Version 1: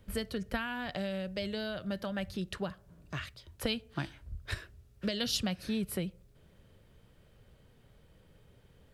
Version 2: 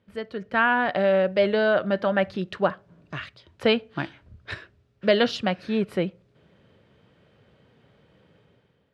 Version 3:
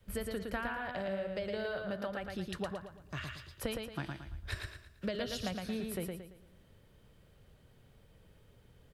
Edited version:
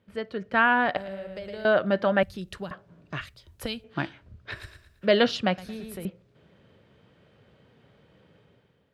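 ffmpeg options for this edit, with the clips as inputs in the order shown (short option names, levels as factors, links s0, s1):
-filter_complex "[2:a]asplit=3[s0][s1][s2];[0:a]asplit=2[s3][s4];[1:a]asplit=6[s5][s6][s7][s8][s9][s10];[s5]atrim=end=0.972[s11];[s0]atrim=start=0.968:end=1.652[s12];[s6]atrim=start=1.648:end=2.232[s13];[s3]atrim=start=2.228:end=2.712[s14];[s7]atrim=start=2.708:end=3.212[s15];[s4]atrim=start=3.208:end=3.842[s16];[s8]atrim=start=3.838:end=4.63[s17];[s1]atrim=start=4.47:end=5.13[s18];[s9]atrim=start=4.97:end=5.582[s19];[s2]atrim=start=5.578:end=6.052[s20];[s10]atrim=start=6.048[s21];[s11][s12]acrossfade=d=0.004:c1=hsin:c2=hsin[s22];[s22][s13]acrossfade=d=0.004:c1=hsin:c2=hsin[s23];[s23][s14]acrossfade=d=0.004:c1=hsin:c2=hsin[s24];[s24][s15]acrossfade=d=0.004:c1=hsin:c2=hsin[s25];[s25][s16]acrossfade=d=0.004:c1=hsin:c2=hsin[s26];[s26][s17]acrossfade=d=0.004:c1=hsin:c2=hsin[s27];[s27][s18]acrossfade=d=0.16:c1=tri:c2=tri[s28];[s28][s19]acrossfade=d=0.16:c1=tri:c2=tri[s29];[s29][s20]acrossfade=d=0.004:c1=hsin:c2=hsin[s30];[s30][s21]acrossfade=d=0.004:c1=hsin:c2=hsin"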